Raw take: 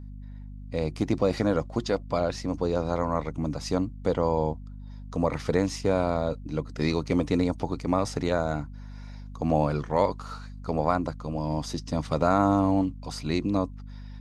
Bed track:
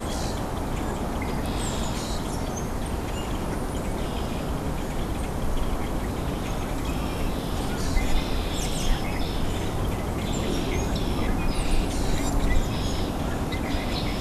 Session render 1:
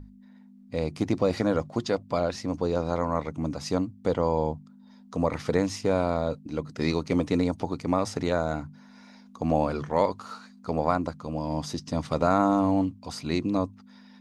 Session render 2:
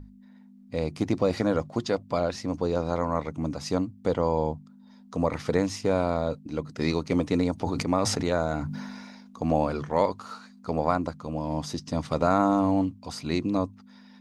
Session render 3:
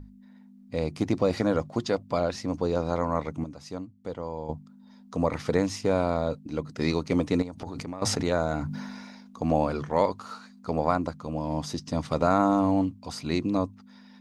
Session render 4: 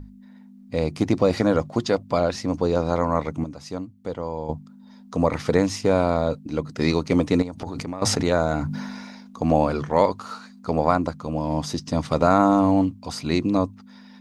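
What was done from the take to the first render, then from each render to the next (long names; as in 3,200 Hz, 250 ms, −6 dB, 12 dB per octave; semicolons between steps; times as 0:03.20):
mains-hum notches 50/100/150 Hz
0:07.54–0:09.53: level that may fall only so fast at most 31 dB per second; 0:11.22–0:11.64: notch filter 4,800 Hz
0:03.44–0:04.49: clip gain −10 dB; 0:07.42–0:08.02: downward compressor 12 to 1, threshold −31 dBFS
level +5 dB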